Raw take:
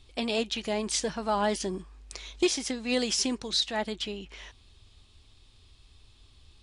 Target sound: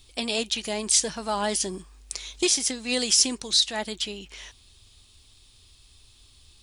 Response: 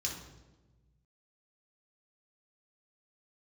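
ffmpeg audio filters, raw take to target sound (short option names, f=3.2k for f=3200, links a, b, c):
-af "aemphasis=mode=production:type=75fm"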